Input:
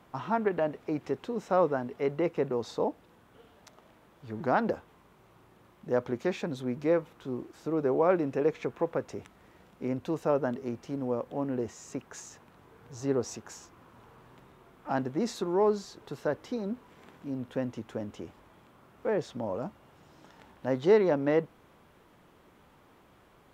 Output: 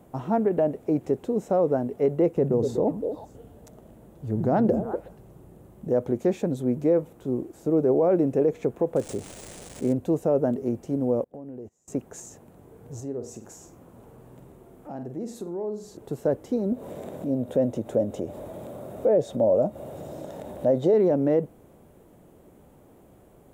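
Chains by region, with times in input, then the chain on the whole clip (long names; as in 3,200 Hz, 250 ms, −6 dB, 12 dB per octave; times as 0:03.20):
0:02.36–0:05.88: low-shelf EQ 140 Hz +9.5 dB + notch filter 2,300 Hz, Q 28 + echo through a band-pass that steps 121 ms, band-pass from 160 Hz, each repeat 1.4 octaves, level −4 dB
0:08.96–0:09.93: spike at every zero crossing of −31.5 dBFS + linearly interpolated sample-rate reduction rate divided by 3×
0:11.24–0:11.88: noise gate −39 dBFS, range −26 dB + downward compressor 4 to 1, threshold −46 dBFS
0:13.00–0:15.97: flutter between parallel walls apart 8.1 metres, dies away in 0.29 s + downward compressor 2 to 1, threshold −47 dBFS
0:16.72–0:20.94: high-pass filter 63 Hz + hollow resonant body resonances 590/3,700 Hz, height 11 dB, ringing for 20 ms + upward compression, threshold −33 dBFS
whole clip: flat-topped bell 2,300 Hz −13.5 dB 2.9 octaves; brickwall limiter −21 dBFS; level +8 dB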